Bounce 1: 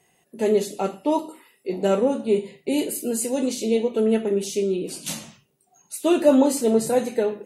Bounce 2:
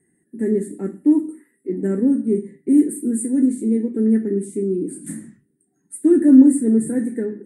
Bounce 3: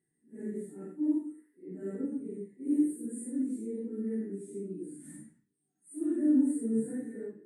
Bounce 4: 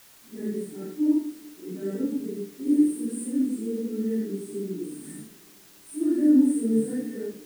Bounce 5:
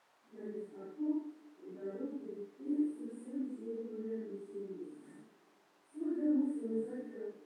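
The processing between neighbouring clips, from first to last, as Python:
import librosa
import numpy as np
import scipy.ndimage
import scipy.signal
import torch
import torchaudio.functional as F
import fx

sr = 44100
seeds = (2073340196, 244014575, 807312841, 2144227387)

y1 = fx.curve_eq(x, sr, hz=(130.0, 300.0, 640.0, 1200.0, 1800.0, 2700.0, 6000.0, 8900.0, 13000.0), db=(0, 12, -19, -17, 2, -29, -26, 5, -17))
y1 = F.gain(torch.from_numpy(y1), -1.0).numpy()
y2 = fx.phase_scramble(y1, sr, seeds[0], window_ms=200)
y2 = fx.comb_fb(y2, sr, f0_hz=150.0, decay_s=0.3, harmonics='all', damping=0.0, mix_pct=70)
y2 = F.gain(torch.from_numpy(y2), -8.5).numpy()
y3 = fx.quant_dither(y2, sr, seeds[1], bits=10, dither='triangular')
y3 = fx.rev_spring(y3, sr, rt60_s=3.5, pass_ms=(47, 51, 60), chirp_ms=50, drr_db=19.0)
y3 = F.gain(torch.from_numpy(y3), 7.0).numpy()
y4 = fx.bandpass_q(y3, sr, hz=810.0, q=1.2)
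y4 = F.gain(torch.from_numpy(y4), -4.0).numpy()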